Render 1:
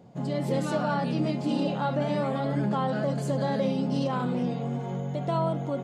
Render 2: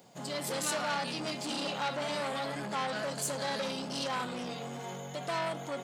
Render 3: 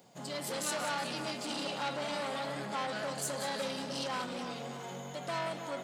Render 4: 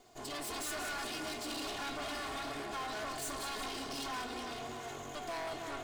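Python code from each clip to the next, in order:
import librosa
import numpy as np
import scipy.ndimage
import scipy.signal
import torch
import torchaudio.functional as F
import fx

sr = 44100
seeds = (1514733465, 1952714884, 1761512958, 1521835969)

y1 = 10.0 ** (-26.0 / 20.0) * np.tanh(x / 10.0 ** (-26.0 / 20.0))
y1 = fx.tilt_eq(y1, sr, slope=4.5)
y2 = fx.echo_split(y1, sr, split_hz=1900.0, low_ms=300, high_ms=183, feedback_pct=52, wet_db=-9.5)
y2 = F.gain(torch.from_numpy(y2), -2.5).numpy()
y3 = fx.lower_of_two(y2, sr, delay_ms=2.8)
y3 = np.clip(y3, -10.0 ** (-37.0 / 20.0), 10.0 ** (-37.0 / 20.0))
y3 = F.gain(torch.from_numpy(y3), 1.0).numpy()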